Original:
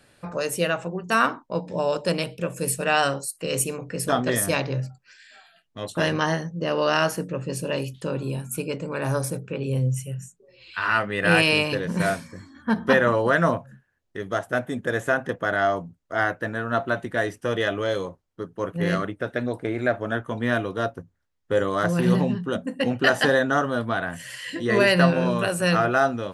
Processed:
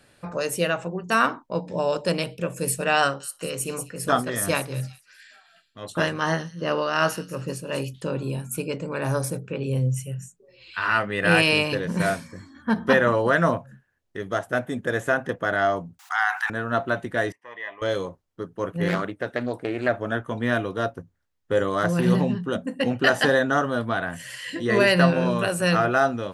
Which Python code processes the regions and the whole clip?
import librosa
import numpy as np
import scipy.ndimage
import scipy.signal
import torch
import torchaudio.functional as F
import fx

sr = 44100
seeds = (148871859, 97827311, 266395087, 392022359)

y = fx.chain(x, sr, fx.peak_eq(hz=1300.0, db=5.0, octaves=0.66),
    fx.echo_wet_highpass(ms=191, feedback_pct=31, hz=3700.0, wet_db=-8.5),
    fx.tremolo(hz=2.7, depth=0.53), at=(3.01, 7.82))
y = fx.chain(y, sr, fx.brickwall_highpass(low_hz=720.0),
    fx.env_flatten(amount_pct=70), at=(15.99, 16.5))
y = fx.chain(y, sr, fx.double_bandpass(hz=1400.0, octaves=0.93),
    fx.transient(attack_db=-3, sustain_db=1), at=(17.32, 17.82))
y = fx.chain(y, sr, fx.highpass(hz=120.0, slope=6),
    fx.doppler_dist(depth_ms=0.24), at=(18.88, 19.89))